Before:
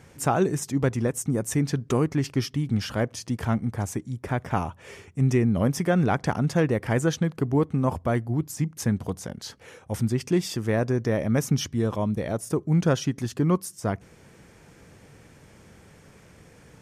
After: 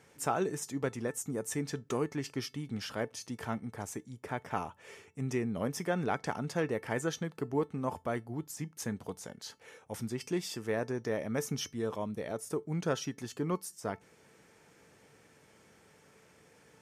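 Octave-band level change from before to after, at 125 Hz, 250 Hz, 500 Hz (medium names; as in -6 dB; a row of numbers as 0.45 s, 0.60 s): -15.0 dB, -11.5 dB, -8.0 dB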